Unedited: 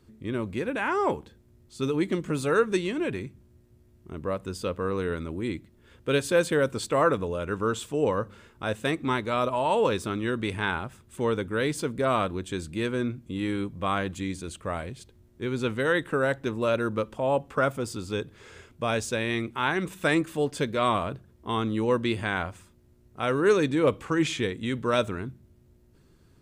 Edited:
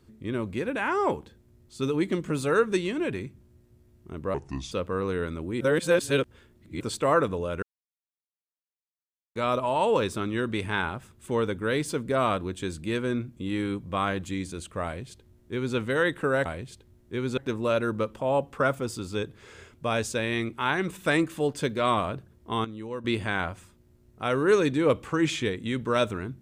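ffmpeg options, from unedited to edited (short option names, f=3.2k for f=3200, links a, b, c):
-filter_complex "[0:a]asplit=11[a][b][c][d][e][f][g][h][i][j][k];[a]atrim=end=4.344[l];[b]atrim=start=4.34:end=4.61,asetpts=PTS-STARTPTS,asetrate=31752,aresample=44100[m];[c]atrim=start=4.606:end=5.502[n];[d]atrim=start=5.498:end=6.702,asetpts=PTS-STARTPTS,areverse[o];[e]atrim=start=6.698:end=7.52,asetpts=PTS-STARTPTS,afade=t=out:st=0.818:d=0.004:c=hsin[p];[f]atrim=start=7.52:end=9.25,asetpts=PTS-STARTPTS,volume=0[q];[g]atrim=start=9.25:end=16.352,asetpts=PTS-STARTPTS,afade=t=in:d=0.004:c=hsin[r];[h]atrim=start=14.738:end=15.662[s];[i]atrim=start=16.348:end=21.622[t];[j]atrim=start=21.618:end=22.022,asetpts=PTS-STARTPTS,volume=-11dB[u];[k]atrim=start=22.018[v];[l][m]acrossfade=d=0.004:c1=hsin:c2=hsin[w];[w][n]acrossfade=d=0.004:c1=hsin:c2=hsin[x];[x][o]acrossfade=d=0.004:c1=hsin:c2=hsin[y];[p][q][r]concat=n=3:v=0:a=1[z];[y][z]acrossfade=d=0.004:c1=hsin:c2=hsin[aa];[aa][s]acrossfade=d=0.004:c1=hsin:c2=hsin[ab];[ab][t]acrossfade=d=0.004:c1=hsin:c2=hsin[ac];[ac][u]acrossfade=d=0.004:c1=hsin:c2=hsin[ad];[ad][v]acrossfade=d=0.004:c1=hsin:c2=hsin"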